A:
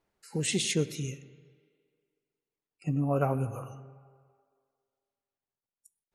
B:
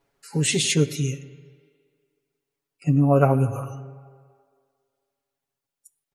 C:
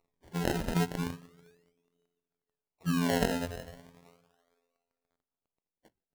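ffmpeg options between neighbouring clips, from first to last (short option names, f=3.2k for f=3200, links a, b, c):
-af "aecho=1:1:7.2:0.78,volume=5.5dB"
-af "afftfilt=real='hypot(re,im)*cos(PI*b)':imag='0':win_size=2048:overlap=0.75,aphaser=in_gain=1:out_gain=1:delay=2.4:decay=0.37:speed=0.97:type=triangular,acrusher=samples=26:mix=1:aa=0.000001:lfo=1:lforange=26:lforate=0.36,volume=-5.5dB"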